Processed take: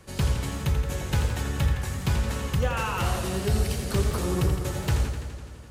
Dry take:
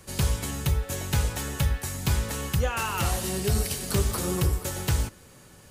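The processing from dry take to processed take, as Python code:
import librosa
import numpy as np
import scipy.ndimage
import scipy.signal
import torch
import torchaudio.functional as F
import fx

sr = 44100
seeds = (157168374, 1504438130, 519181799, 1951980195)

y = fx.high_shelf(x, sr, hz=5600.0, db=-10.0)
y = fx.echo_warbled(y, sr, ms=84, feedback_pct=74, rate_hz=2.8, cents=98, wet_db=-8.5)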